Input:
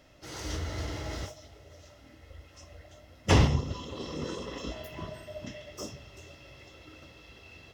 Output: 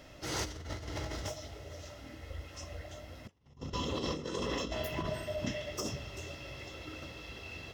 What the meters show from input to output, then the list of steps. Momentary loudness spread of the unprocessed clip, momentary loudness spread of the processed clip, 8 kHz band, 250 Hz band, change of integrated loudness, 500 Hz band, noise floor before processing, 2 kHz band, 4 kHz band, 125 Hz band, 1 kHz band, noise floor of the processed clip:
25 LU, 12 LU, -0.5 dB, -5.0 dB, -7.0 dB, -1.5 dB, -56 dBFS, -3.0 dB, -1.5 dB, -9.5 dB, -4.0 dB, -54 dBFS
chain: compressor with a negative ratio -39 dBFS, ratio -0.5

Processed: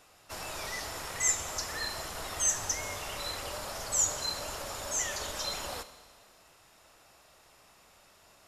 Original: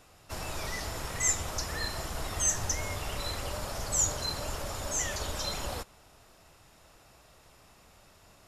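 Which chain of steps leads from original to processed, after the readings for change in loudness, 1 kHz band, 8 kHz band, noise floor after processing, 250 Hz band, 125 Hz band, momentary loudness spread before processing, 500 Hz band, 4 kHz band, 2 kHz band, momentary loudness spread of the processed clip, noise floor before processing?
-0.5 dB, -0.5 dB, 0.0 dB, -61 dBFS, -5.5 dB, -9.5 dB, 10 LU, -2.0 dB, +0.5 dB, 0.0 dB, 11 LU, -59 dBFS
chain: bass shelf 270 Hz -11 dB; Schroeder reverb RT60 1.7 s, combs from 30 ms, DRR 12.5 dB

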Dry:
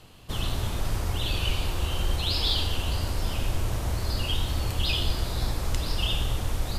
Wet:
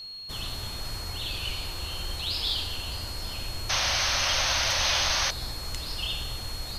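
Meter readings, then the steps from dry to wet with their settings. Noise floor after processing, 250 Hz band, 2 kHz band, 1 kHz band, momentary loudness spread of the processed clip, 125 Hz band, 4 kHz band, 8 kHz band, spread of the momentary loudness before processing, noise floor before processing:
-37 dBFS, -9.0 dB, +6.0 dB, +3.0 dB, 11 LU, -9.5 dB, +3.0 dB, +8.5 dB, 5 LU, -32 dBFS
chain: whistle 4.3 kHz -36 dBFS; tilt shelf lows -4 dB; painted sound noise, 3.69–5.31 s, 510–6500 Hz -21 dBFS; trim -5.5 dB

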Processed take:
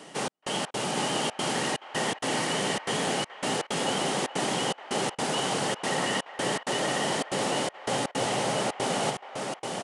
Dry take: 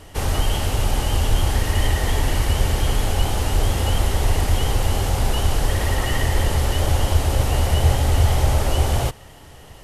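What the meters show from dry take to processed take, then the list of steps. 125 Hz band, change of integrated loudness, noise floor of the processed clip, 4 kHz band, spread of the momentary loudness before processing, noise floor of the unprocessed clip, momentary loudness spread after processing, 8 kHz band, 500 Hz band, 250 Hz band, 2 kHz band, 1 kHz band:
-20.0 dB, -7.5 dB, -52 dBFS, -2.0 dB, 4 LU, -43 dBFS, 4 LU, -3.0 dB, -2.0 dB, -2.5 dB, -2.0 dB, -2.0 dB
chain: steep high-pass 150 Hz 48 dB/octave; reverse; compression, threshold -25 dBFS, peak gain reduction 3.5 dB; reverse; delay 812 ms -4 dB; trance gate "xxx..xx.xxxxxx.x" 162 bpm -60 dB; on a send: feedback echo behind a band-pass 425 ms, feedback 31%, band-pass 1.3 kHz, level -12 dB; on the sum: resampled via 22.05 kHz

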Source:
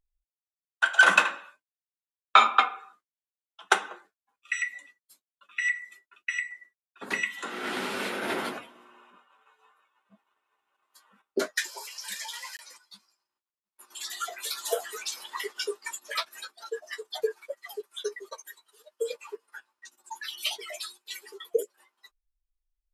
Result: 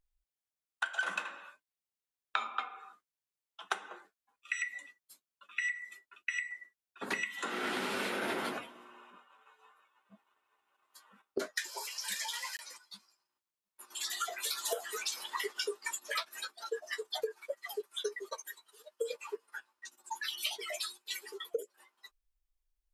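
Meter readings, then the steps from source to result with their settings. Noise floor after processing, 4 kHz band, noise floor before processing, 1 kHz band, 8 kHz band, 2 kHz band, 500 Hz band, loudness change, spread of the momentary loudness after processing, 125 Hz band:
under -85 dBFS, -5.0 dB, under -85 dBFS, -12.0 dB, -3.0 dB, -10.0 dB, -6.0 dB, -9.0 dB, 17 LU, -4.5 dB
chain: compression 16:1, threshold -31 dBFS, peak gain reduction 20.5 dB

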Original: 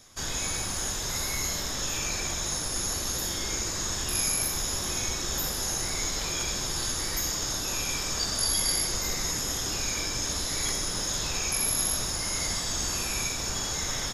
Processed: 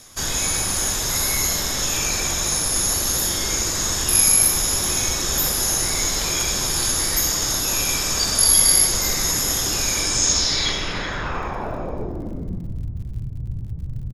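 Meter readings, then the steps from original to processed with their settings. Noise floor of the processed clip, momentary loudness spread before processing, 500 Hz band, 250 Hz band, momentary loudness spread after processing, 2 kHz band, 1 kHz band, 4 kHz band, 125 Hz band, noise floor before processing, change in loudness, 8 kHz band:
-30 dBFS, 4 LU, +7.5 dB, +7.5 dB, 18 LU, +7.0 dB, +7.0 dB, +7.0 dB, +8.0 dB, -32 dBFS, +9.5 dB, +9.0 dB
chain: low-pass sweep 12 kHz -> 120 Hz, 9.95–12.83 s; speakerphone echo 380 ms, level -10 dB; crackle 61 per s -46 dBFS; trim +7 dB

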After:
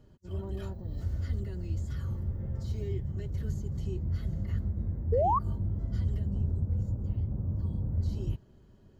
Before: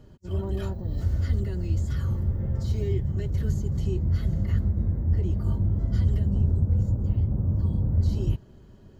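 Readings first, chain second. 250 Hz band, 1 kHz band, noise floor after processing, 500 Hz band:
-7.5 dB, no reading, -58 dBFS, 0.0 dB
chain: painted sound rise, 5.12–5.39 s, 430–1200 Hz -18 dBFS; trim -7.5 dB

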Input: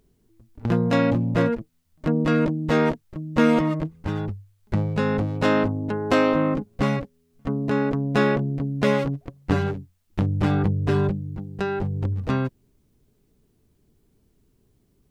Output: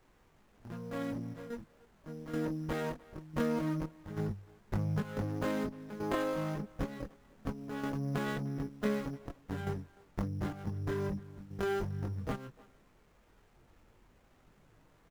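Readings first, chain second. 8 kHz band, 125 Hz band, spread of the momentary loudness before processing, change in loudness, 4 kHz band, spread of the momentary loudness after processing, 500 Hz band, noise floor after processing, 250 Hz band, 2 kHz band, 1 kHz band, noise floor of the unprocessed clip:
no reading, -13.5 dB, 10 LU, -14.0 dB, -14.0 dB, 12 LU, -13.5 dB, -66 dBFS, -14.0 dB, -14.5 dB, -14.0 dB, -65 dBFS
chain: fade-in on the opening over 4.52 s; resonant high shelf 2.5 kHz -7.5 dB, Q 3; trance gate "x..xxxxx.xx" 90 bpm -12 dB; added noise pink -58 dBFS; in parallel at -4 dB: sample-and-hold 8×; on the sum: compression 6:1, threshold -21 dBFS, peak gain reduction 11 dB; chorus voices 4, 0.21 Hz, delay 22 ms, depth 3.4 ms; speakerphone echo 300 ms, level -21 dB; sliding maximum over 9 samples; trim -7 dB

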